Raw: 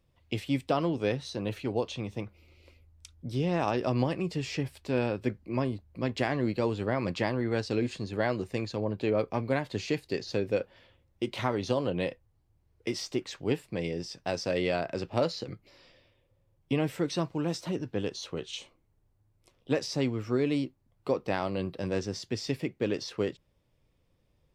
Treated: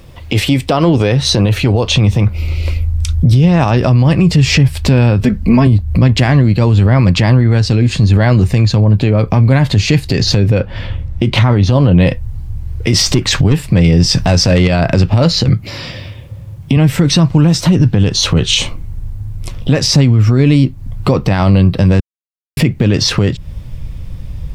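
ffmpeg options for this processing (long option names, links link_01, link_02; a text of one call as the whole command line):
ffmpeg -i in.wav -filter_complex "[0:a]asettb=1/sr,asplit=3[link_01][link_02][link_03];[link_01]atrim=end=5.214[link_04];[link_02]atrim=start=5.21:end=5.67,asetpts=PTS-STARTPTS,afade=type=in:duration=0.004:curve=qsin,afade=type=out:start_time=0.456:duration=0.004:curve=qsin,aecho=1:1:4.5:0.84,atrim=end_sample=20286[link_05];[link_03]atrim=start=5.666[link_06];[link_04][link_05]acrossfade=duration=0.004:curve1=hsin:curve2=qsin[link_07];[link_07][link_06]acrossfade=duration=0.004:curve1=qsin:curve2=hsin,asettb=1/sr,asplit=3[link_08][link_09][link_10];[link_08]atrim=end=10.504[link_11];[link_09]atrim=start=10.5:end=12.07,asetpts=PTS-STARTPTS,afade=type=in:duration=0.004:curve=qsin,afade=type=out:start_time=1.566:duration=0.004:curve=qsin,lowpass=frequency=3300:poles=1[link_12];[link_10]atrim=start=12.066[link_13];[link_11][link_12]acrossfade=duration=0.004:curve1=hsin:curve2=qsin[link_14];[link_14][link_13]acrossfade=duration=0.004:curve1=qsin:curve2=hsin,asettb=1/sr,asplit=3[link_15][link_16][link_17];[link_15]atrim=end=12.934[link_18];[link_16]atrim=start=12.93:end=14.68,asetpts=PTS-STARTPTS,afade=type=in:duration=0.004:curve=qsin,afade=type=out:start_time=1.746:duration=0.004:curve=qsin,aeval=exprs='0.211*sin(PI/2*1.58*val(0)/0.211)':channel_layout=same[link_19];[link_17]atrim=start=14.676[link_20];[link_18][link_19]acrossfade=duration=0.004:curve1=hsin:curve2=qsin[link_21];[link_21][link_20]acrossfade=duration=0.004:curve1=qsin:curve2=hsin,asettb=1/sr,asplit=3[link_22][link_23][link_24];[link_22]atrim=end=15.494[link_25];[link_23]atrim=start=15.49:end=16.77,asetpts=PTS-STARTPTS,afade=type=in:duration=0.004:curve=qsin,afade=type=out:start_time=1.276:duration=0.004:curve=qsin,highpass=100[link_26];[link_24]atrim=start=16.766[link_27];[link_25][link_26]acrossfade=duration=0.004:curve1=hsin:curve2=qsin[link_28];[link_28][link_27]acrossfade=duration=0.004:curve1=qsin:curve2=hsin,asplit=3[link_29][link_30][link_31];[link_29]atrim=end=22,asetpts=PTS-STARTPTS,afade=type=out:start_time=21.996:duration=0.004:curve=hsin[link_32];[link_30]atrim=start=22:end=22.57,asetpts=PTS-STARTPTS,volume=0[link_33];[link_31]atrim=start=22.57,asetpts=PTS-STARTPTS,afade=type=in:duration=0.004:curve=hsin[link_34];[link_32][link_33][link_34]concat=n=3:v=0:a=1,asubboost=boost=7.5:cutoff=140,acompressor=threshold=-35dB:ratio=6,alimiter=level_in=33dB:limit=-1dB:release=50:level=0:latency=1,volume=-1dB" out.wav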